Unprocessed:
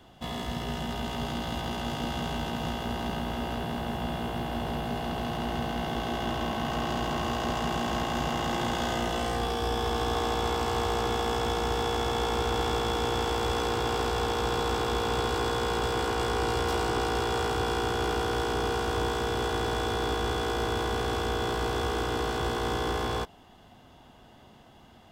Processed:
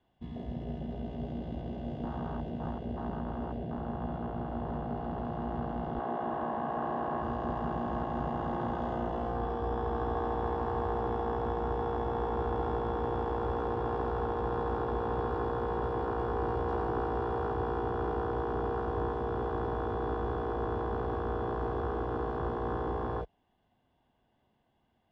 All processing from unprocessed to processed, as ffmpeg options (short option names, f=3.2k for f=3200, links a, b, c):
-filter_complex "[0:a]asettb=1/sr,asplit=3[a][b][c];[a]atrim=end=5.994[d];[b]atrim=start=5.99:end=7.22,asetpts=PTS-STARTPTS,afade=t=in:d=0.004:c=qsin,afade=t=out:st=1.226:d=0.004:c=qsin,highpass=67,asplit=2[e][f];[f]highpass=f=720:p=1,volume=12dB,asoftclip=type=tanh:threshold=-18dB[g];[e][g]amix=inputs=2:normalize=0,lowpass=f=1.5k:p=1,volume=-6dB,bandreject=f=60:t=h:w=6,bandreject=f=120:t=h:w=6,bandreject=f=180:t=h:w=6[h];[c]atrim=start=7.216[i];[d][h]acrossfade=d=0.004:c1=hsin:c2=qsin[j];[j][i]acrossfade=d=0.004:c1=qsin:c2=hsin,bandreject=f=1.3k:w=7.5,afwtdn=0.0355,lowpass=3.1k,volume=-3dB"